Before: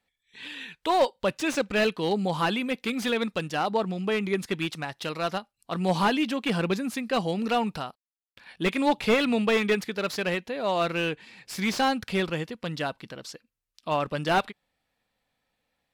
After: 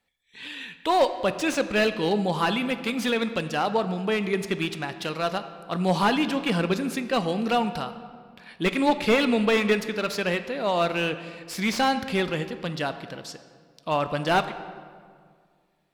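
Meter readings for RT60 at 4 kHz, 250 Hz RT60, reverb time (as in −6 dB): 1.2 s, 2.2 s, 2.0 s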